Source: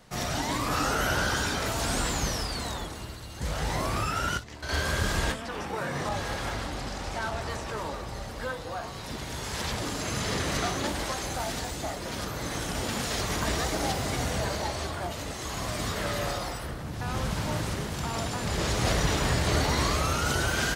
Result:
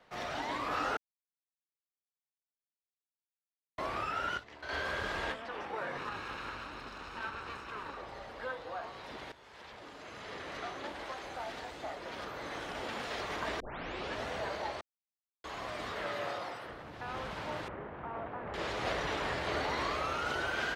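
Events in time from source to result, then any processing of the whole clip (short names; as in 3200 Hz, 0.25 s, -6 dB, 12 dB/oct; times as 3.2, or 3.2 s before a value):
0.97–3.78 mute
5.97–7.97 minimum comb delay 0.75 ms
9.32–12.26 fade in, from -14.5 dB
13.6 tape start 0.68 s
14.81–15.44 mute
16.05–16.69 HPF 88 Hz 24 dB/oct
17.68–18.54 Bessel low-pass 1400 Hz, order 4
whole clip: three-band isolator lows -14 dB, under 320 Hz, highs -19 dB, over 3800 Hz; gain -4.5 dB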